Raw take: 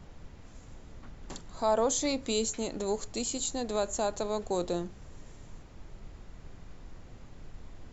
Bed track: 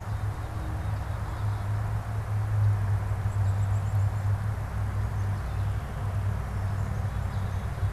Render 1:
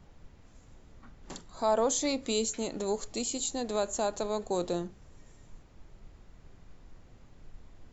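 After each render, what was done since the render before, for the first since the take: noise print and reduce 6 dB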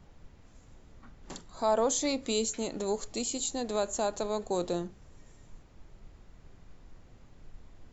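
no audible change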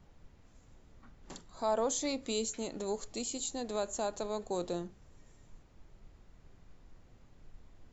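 trim -4.5 dB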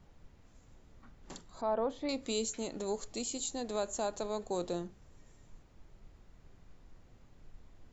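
1.61–2.09 s: distance through air 430 m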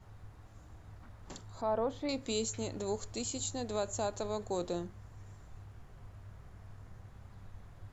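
add bed track -23 dB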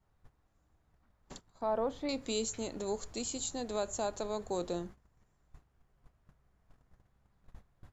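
gate -46 dBFS, range -17 dB; peaking EQ 100 Hz -14.5 dB 0.23 oct

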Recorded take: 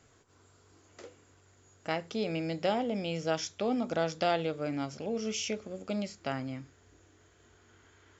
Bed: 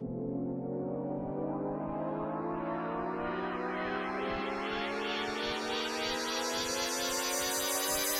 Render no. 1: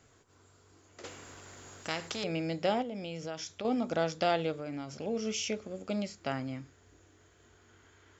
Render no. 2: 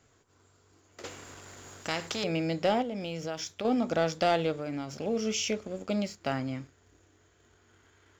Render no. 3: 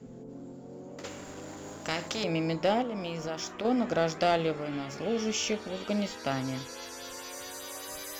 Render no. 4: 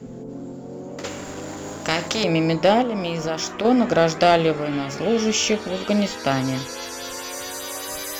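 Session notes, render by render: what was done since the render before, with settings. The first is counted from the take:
1.04–2.24 s: spectrum-flattening compressor 2:1; 2.82–3.65 s: compression 3:1, threshold -37 dBFS; 4.52–4.95 s: compression, threshold -35 dBFS
waveshaping leveller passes 1
add bed -9 dB
trim +10 dB

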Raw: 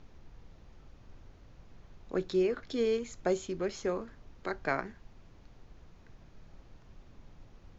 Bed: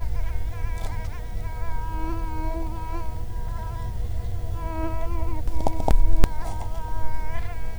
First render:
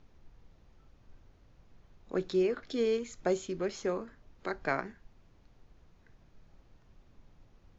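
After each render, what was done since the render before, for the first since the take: noise print and reduce 6 dB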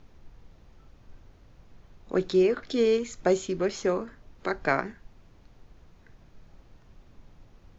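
trim +6.5 dB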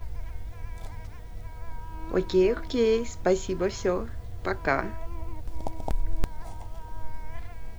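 add bed -9.5 dB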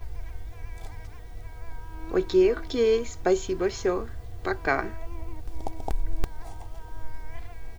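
bass shelf 170 Hz -3 dB; comb 2.6 ms, depth 37%

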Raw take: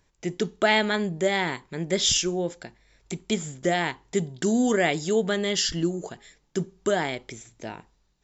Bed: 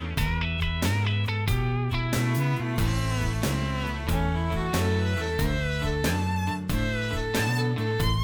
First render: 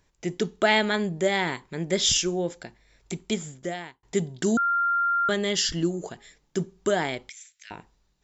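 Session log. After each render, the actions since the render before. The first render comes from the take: 3.20–4.03 s: fade out; 4.57–5.29 s: bleep 1.39 kHz -20.5 dBFS; 7.29–7.71 s: inverse Chebyshev high-pass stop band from 850 Hz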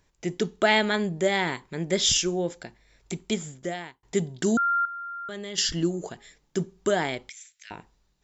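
4.85–5.58 s: level held to a coarse grid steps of 18 dB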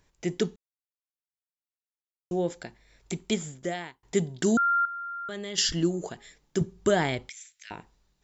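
0.56–2.31 s: mute; 6.61–7.26 s: peaking EQ 79 Hz +13.5 dB 1.6 oct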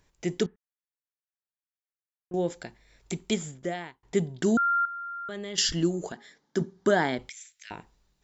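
0.46–2.34 s: four-pole ladder low-pass 2 kHz, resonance 60%; 3.51–5.58 s: treble shelf 4.3 kHz -8 dB; 6.12–7.19 s: cabinet simulation 190–6200 Hz, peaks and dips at 240 Hz +7 dB, 870 Hz +3 dB, 1.6 kHz +5 dB, 2.6 kHz -10 dB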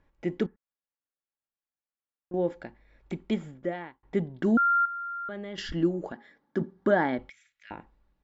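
low-pass 1.9 kHz 12 dB/octave; comb 3.6 ms, depth 35%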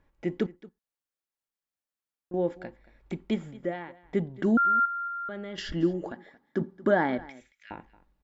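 delay 226 ms -20 dB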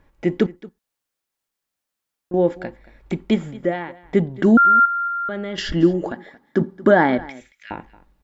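trim +10 dB; peak limiter -3 dBFS, peak gain reduction 1.5 dB

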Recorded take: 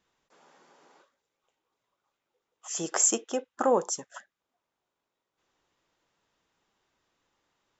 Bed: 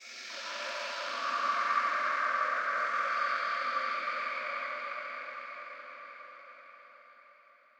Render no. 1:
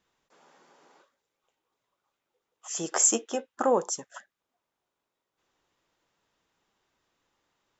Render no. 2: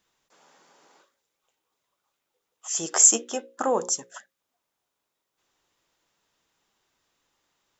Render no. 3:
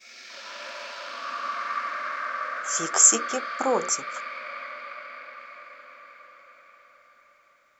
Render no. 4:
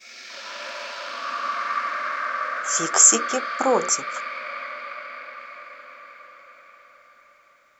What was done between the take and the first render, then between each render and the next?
2.94–3.52 s: doubling 13 ms -6.5 dB
treble shelf 3.7 kHz +8 dB; hum notches 60/120/180/240/300/360/420/480/540 Hz
add bed -0.5 dB
trim +4 dB; peak limiter -1 dBFS, peak gain reduction 2.5 dB

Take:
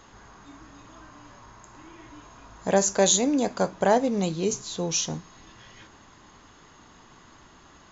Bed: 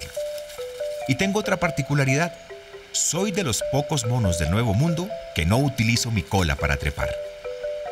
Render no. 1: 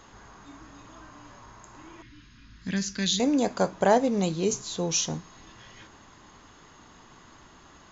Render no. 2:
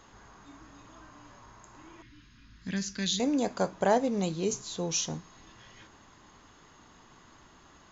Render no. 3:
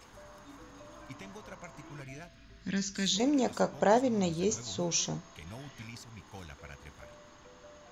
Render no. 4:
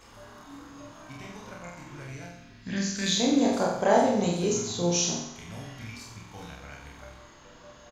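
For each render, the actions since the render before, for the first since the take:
2.02–3.20 s: FFT filter 250 Hz 0 dB, 520 Hz -24 dB, 750 Hz -29 dB, 1.7 kHz -2 dB, 5 kHz +1 dB, 7.9 kHz -18 dB
trim -4 dB
add bed -26 dB
doubling 29 ms -2 dB; on a send: flutter echo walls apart 7.9 m, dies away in 0.75 s

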